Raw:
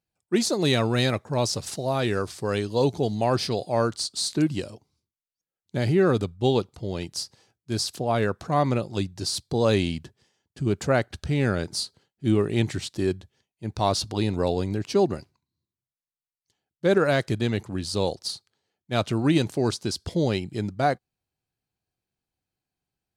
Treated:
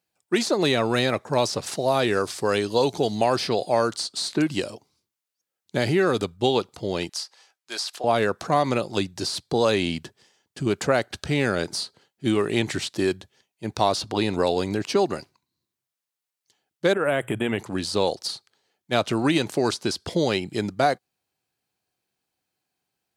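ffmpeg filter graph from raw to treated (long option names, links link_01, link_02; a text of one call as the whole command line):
ffmpeg -i in.wav -filter_complex "[0:a]asettb=1/sr,asplit=3[link_01][link_02][link_03];[link_01]atrim=end=7.094[link_04];[link_02]atrim=start=7.09:end=8.04,asetpts=PTS-STARTPTS,afade=type=in:duration=0.004:curve=qsin,afade=type=out:start_time=0.946:duration=0.004:curve=qsin,highpass=820,highshelf=frequency=9700:gain=-6[link_05];[link_03]atrim=start=8.036[link_06];[link_04][link_05]acrossfade=duration=0.004:curve1=hsin:curve2=qsin[link_07];[link_07][link_06]acrossfade=duration=0.004:curve1=qsin:curve2=hsin,asettb=1/sr,asplit=3[link_08][link_09][link_10];[link_08]atrim=end=16.934[link_11];[link_09]atrim=start=16.93:end=17.59,asetpts=PTS-STARTPTS,afade=type=in:duration=0.004:curve=qsin,afade=type=out:start_time=0.656:duration=0.004:curve=qsin,bandreject=frequency=60:width_type=h:width=6,bandreject=frequency=120:width_type=h:width=6,acompressor=threshold=-22dB:ratio=5:attack=3.2:release=140:knee=1:detection=peak,asuperstop=centerf=5100:order=12:qfactor=1.2[link_12];[link_10]atrim=start=17.586[link_13];[link_11][link_12]acrossfade=duration=0.004:curve1=hsin:curve2=qsin[link_14];[link_14][link_13]acrossfade=duration=0.004:curve1=qsin:curve2=hsin,highpass=frequency=370:poles=1,acrossover=split=900|3000[link_15][link_16][link_17];[link_15]acompressor=threshold=-27dB:ratio=4[link_18];[link_16]acompressor=threshold=-35dB:ratio=4[link_19];[link_17]acompressor=threshold=-40dB:ratio=4[link_20];[link_18][link_19][link_20]amix=inputs=3:normalize=0,volume=8dB" out.wav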